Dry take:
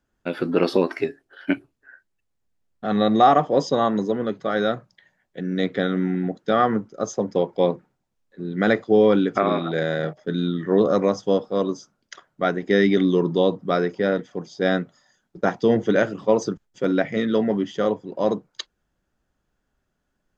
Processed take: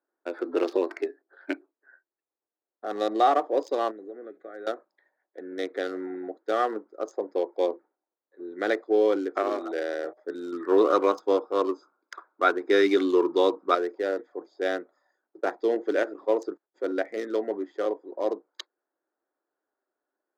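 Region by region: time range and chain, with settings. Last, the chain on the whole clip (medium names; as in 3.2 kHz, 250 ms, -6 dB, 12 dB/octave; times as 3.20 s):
3.91–4.67 s: peaking EQ 780 Hz +7.5 dB 0.52 oct + compression 3:1, threshold -29 dBFS + static phaser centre 2.2 kHz, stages 4
10.52–13.75 s: peaking EQ 940 Hz +8.5 dB 2.8 oct + comb 0.8 ms, depth 52%
whole clip: local Wiener filter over 15 samples; dynamic bell 990 Hz, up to -3 dB, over -30 dBFS, Q 1.2; elliptic high-pass 320 Hz, stop band 80 dB; trim -3.5 dB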